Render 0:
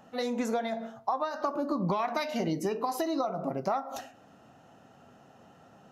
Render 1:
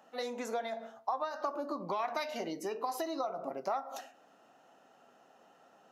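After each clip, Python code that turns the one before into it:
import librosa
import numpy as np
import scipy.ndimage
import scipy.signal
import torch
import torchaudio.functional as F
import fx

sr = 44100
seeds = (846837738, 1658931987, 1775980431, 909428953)

y = scipy.signal.sosfilt(scipy.signal.butter(2, 370.0, 'highpass', fs=sr, output='sos'), x)
y = y * librosa.db_to_amplitude(-4.0)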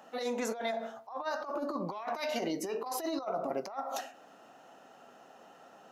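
y = fx.over_compress(x, sr, threshold_db=-38.0, ratio=-0.5)
y = y * librosa.db_to_amplitude(4.0)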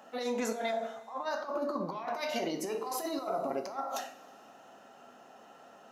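y = fx.rev_double_slope(x, sr, seeds[0], early_s=0.46, late_s=2.8, knee_db=-17, drr_db=6.5)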